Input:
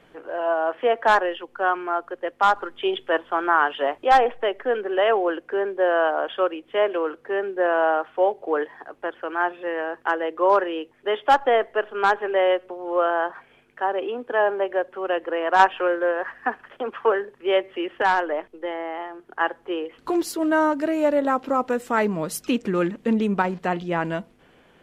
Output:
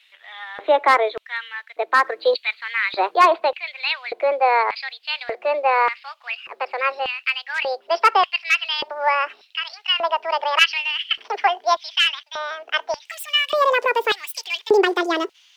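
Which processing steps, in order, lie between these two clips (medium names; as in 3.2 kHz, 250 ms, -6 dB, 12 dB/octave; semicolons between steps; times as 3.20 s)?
gliding tape speed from 120% -> 199%; LFO high-pass square 0.85 Hz 370–2800 Hz; trim +1.5 dB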